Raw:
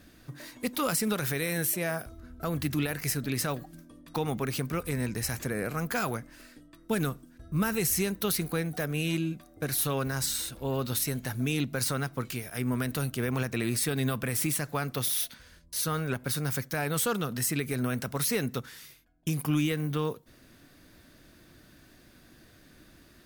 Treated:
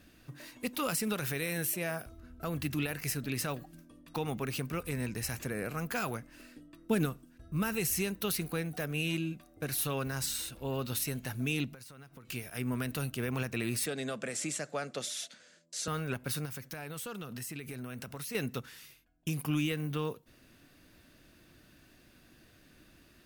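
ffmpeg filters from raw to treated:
-filter_complex "[0:a]asettb=1/sr,asplit=3[a][b][c];[a]atrim=end=6.344[d];[b]atrim=start=6.34:end=7.06,asetpts=PTS-STARTPTS,afade=t=in:d=0.004:c=qsin,afade=t=out:st=0.716:d=0.004:c=qsin,equalizer=f=270:w=0.58:g=5.5[e];[c]atrim=start=7.056[f];[d][e]acrossfade=d=0.004:c1=hsin:c2=qsin[g];[g][f]acrossfade=d=0.004:c1=qsin:c2=hsin,asettb=1/sr,asplit=3[h][i][j];[h]atrim=end=11.734[k];[i]atrim=start=11.73:end=12.29,asetpts=PTS-STARTPTS,afade=t=in:d=0.004:c=qsin,afade=t=out:st=0.556:d=0.004:c=qsin,acompressor=threshold=-42dB:ratio=16:attack=3.2:release=140:knee=1:detection=peak[l];[j]atrim=start=12.286[m];[k][l]acrossfade=d=0.004:c1=hsin:c2=qsin[n];[n][m]acrossfade=d=0.004:c1=qsin:c2=hsin,asettb=1/sr,asplit=3[o][p][q];[o]atrim=end=13.864[r];[p]atrim=start=13.86:end=15.88,asetpts=PTS-STARTPTS,afade=t=in:d=0.004:c=qsin,afade=t=out:st=2.016:d=0.004:c=qsin,highpass=f=180:w=0.5412,highpass=f=180:w=1.3066,equalizer=f=270:t=q:w=4:g=-4,equalizer=f=590:t=q:w=4:g=7,equalizer=f=1k:t=q:w=4:g=-7,equalizer=f=2.7k:t=q:w=4:g=-5,equalizer=f=7.3k:t=q:w=4:g=10,lowpass=f=8.3k:w=0.5412,lowpass=f=8.3k:w=1.3066[s];[q]atrim=start=15.876[t];[r][s]acrossfade=d=0.004:c1=hsin:c2=qsin[u];[u][t]acrossfade=d=0.004:c1=qsin:c2=hsin,asettb=1/sr,asplit=3[v][w][x];[v]atrim=end=16.454[y];[w]atrim=start=16.45:end=18.35,asetpts=PTS-STARTPTS,afade=t=in:d=0.004:c=qsin,afade=t=out:st=1.896:d=0.004:c=qsin,acompressor=threshold=-34dB:ratio=4:attack=3.2:release=140:knee=1:detection=peak[z];[x]atrim=start=18.346[aa];[y][z]acrossfade=d=0.004:c1=hsin:c2=qsin[ab];[ab][aa]acrossfade=d=0.004:c1=qsin:c2=hsin,equalizer=f=2.7k:t=o:w=0.24:g=6.5,volume=-4.5dB"

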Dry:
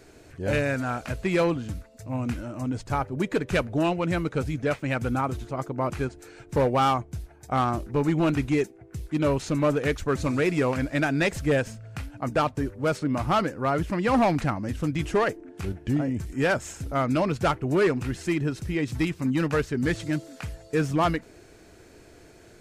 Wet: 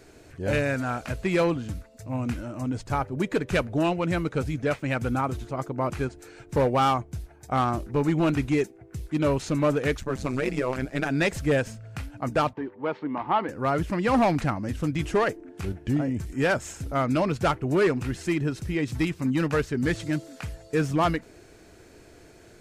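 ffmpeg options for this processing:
-filter_complex "[0:a]asplit=3[a][b][c];[a]afade=t=out:st=9.99:d=0.02[d];[b]tremolo=f=130:d=0.857,afade=t=in:st=9.99:d=0.02,afade=t=out:st=11.09:d=0.02[e];[c]afade=t=in:st=11.09:d=0.02[f];[d][e][f]amix=inputs=3:normalize=0,asettb=1/sr,asplit=3[g][h][i];[g]atrim=end=12.534[j];[h]atrim=start=12.53:end=13.49,asetpts=PTS-STARTPTS,afade=t=in:d=0.004:c=qsin,afade=t=out:st=0.956:d=0.004:c=qsin,highpass=300,equalizer=f=580:t=q:w=4:g=-8,equalizer=f=910:t=q:w=4:g=8,equalizer=f=1.4k:t=q:w=4:g=-7,equalizer=f=2.5k:t=q:w=4:g=-5,lowpass=f=2.9k:w=0.5412,lowpass=f=2.9k:w=1.3066[k];[i]atrim=start=13.486[l];[j][k]acrossfade=d=0.004:c1=hsin:c2=qsin[m];[m][l]acrossfade=d=0.004:c1=qsin:c2=hsin"

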